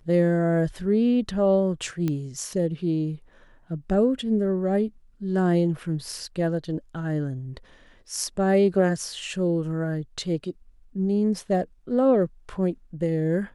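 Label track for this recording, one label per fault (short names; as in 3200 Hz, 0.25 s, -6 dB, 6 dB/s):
2.080000	2.080000	pop -15 dBFS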